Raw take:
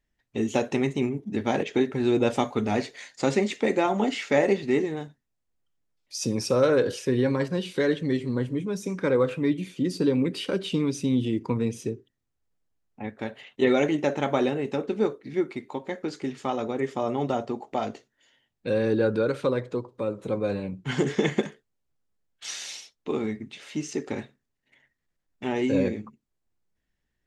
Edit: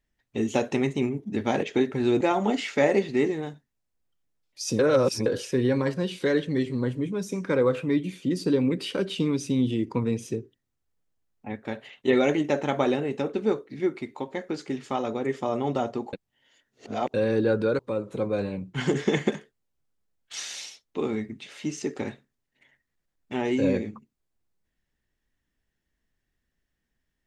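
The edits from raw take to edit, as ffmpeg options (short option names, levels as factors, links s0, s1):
-filter_complex "[0:a]asplit=7[s0][s1][s2][s3][s4][s5][s6];[s0]atrim=end=2.212[s7];[s1]atrim=start=3.748:end=6.332[s8];[s2]atrim=start=6.328:end=6.802,asetpts=PTS-STARTPTS,areverse[s9];[s3]atrim=start=6.798:end=17.672[s10];[s4]atrim=start=17.668:end=18.682,asetpts=PTS-STARTPTS,areverse[s11];[s5]atrim=start=18.678:end=19.332[s12];[s6]atrim=start=19.898[s13];[s7][s8]acrossfade=d=0.004:c1=hsin:c2=hsin[s14];[s14][s9]acrossfade=d=0.004:c1=hsin:c2=hsin[s15];[s15][s10]acrossfade=d=0.004:c1=hsin:c2=hsin[s16];[s16][s11]acrossfade=d=0.004:c1=hsin:c2=hsin[s17];[s17][s12]acrossfade=d=0.004:c1=hsin:c2=hsin[s18];[s18][s13]acrossfade=d=0.004:c1=hsin:c2=hsin"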